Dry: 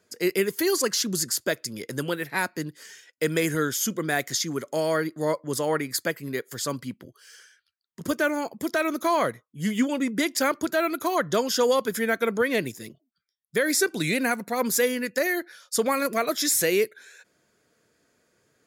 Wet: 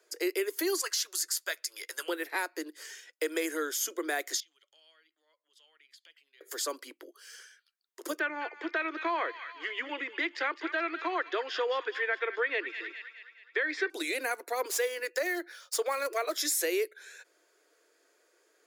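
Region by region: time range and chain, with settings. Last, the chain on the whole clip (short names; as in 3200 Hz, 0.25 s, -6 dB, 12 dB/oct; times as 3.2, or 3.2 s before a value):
0.81–2.08 HPF 1100 Hz + doubler 12 ms -13.5 dB
4.4–6.41 compressor 16:1, threshold -34 dBFS + band-pass 3100 Hz, Q 7.2 + three-band expander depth 70%
8.19–13.9 speaker cabinet 320–3600 Hz, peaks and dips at 590 Hz -8 dB, 1800 Hz +6 dB, 2600 Hz +4 dB + thin delay 0.209 s, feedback 50%, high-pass 1700 Hz, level -10 dB
14.65–16.36 median filter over 3 samples + HPF 320 Hz 24 dB/oct
whole clip: compressor 2:1, threshold -32 dBFS; steep high-pass 310 Hz 72 dB/oct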